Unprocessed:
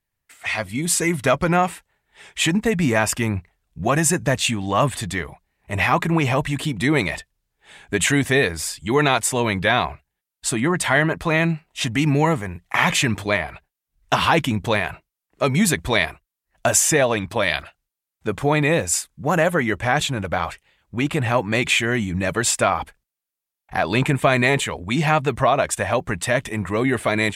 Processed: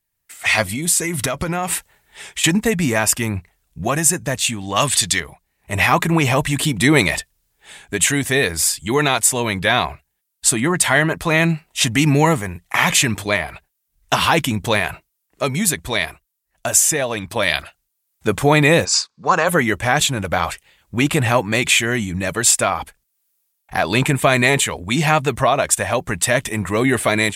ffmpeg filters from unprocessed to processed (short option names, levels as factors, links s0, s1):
-filter_complex "[0:a]asettb=1/sr,asplit=3[s0][s1][s2];[s0]atrim=end=0.674[s3];[s1]atrim=start=0.67:end=2.44,asetpts=PTS-STARTPTS,afade=t=in:d=0.004:c=qsin,afade=t=out:st=1.766:d=0.004:c=qsin,acompressor=threshold=0.0398:ratio=8:attack=3.2:release=140:knee=1:detection=peak[s4];[s2]atrim=start=2.436[s5];[s3][s4]acrossfade=d=0.004:c1=hsin:c2=qsin[s6];[s6][s5]acrossfade=d=0.004:c1=qsin:c2=hsin,asettb=1/sr,asplit=3[s7][s8][s9];[s7]atrim=end=4.764[s10];[s8]atrim=start=4.76:end=5.2,asetpts=PTS-STARTPTS,afade=t=in:d=0.004:c=qsin,afade=t=out:st=0.436:d=0.004:c=qsin,equalizer=f=4900:w=0.46:g=13.5[s11];[s9]atrim=start=5.196[s12];[s10][s11]acrossfade=d=0.004:c1=hsin:c2=qsin[s13];[s13][s12]acrossfade=d=0.004:c1=qsin:c2=hsin,asplit=3[s14][s15][s16];[s14]afade=t=out:st=18.84:d=0.02[s17];[s15]highpass=300,equalizer=f=300:t=q:w=4:g=-10,equalizer=f=620:t=q:w=4:g=-8,equalizer=f=1100:t=q:w=4:g=7,equalizer=f=2000:t=q:w=4:g=-8,equalizer=f=3100:t=q:w=4:g=-7,equalizer=f=4600:t=q:w=4:g=8,lowpass=f=5600:w=0.5412,lowpass=f=5600:w=1.3066,afade=t=in:st=18.84:d=0.02,afade=t=out:st=19.47:d=0.02[s18];[s16]afade=t=in:st=19.47:d=0.02[s19];[s17][s18][s19]amix=inputs=3:normalize=0,highshelf=f=5100:g=11,dynaudnorm=f=150:g=5:m=3.76,volume=0.891"